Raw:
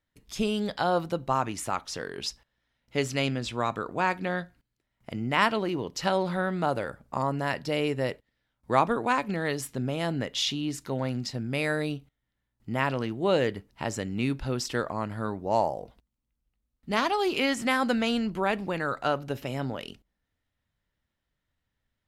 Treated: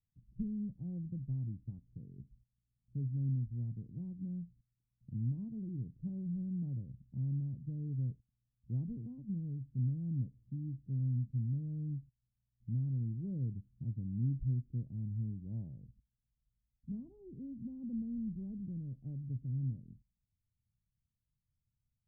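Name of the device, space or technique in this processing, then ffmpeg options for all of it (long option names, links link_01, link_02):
the neighbour's flat through the wall: -af "lowpass=frequency=200:width=0.5412,lowpass=frequency=200:width=1.3066,equalizer=frequency=120:width_type=o:width=0.64:gain=7,volume=-5dB"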